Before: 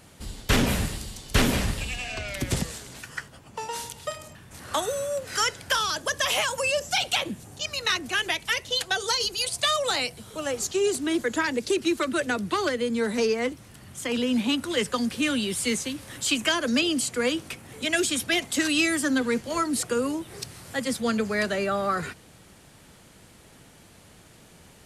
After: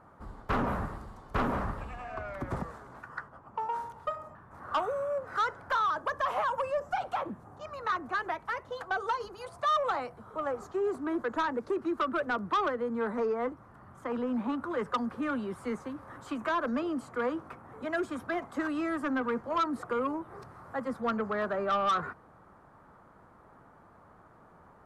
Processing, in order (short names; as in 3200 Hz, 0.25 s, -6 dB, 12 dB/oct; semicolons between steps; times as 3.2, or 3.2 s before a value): EQ curve 140 Hz 0 dB, 490 Hz +4 dB, 1200 Hz +14 dB, 2800 Hz -17 dB, 8300 Hz -22 dB, 12000 Hz -20 dB; soft clip -14.5 dBFS, distortion -14 dB; gain -8 dB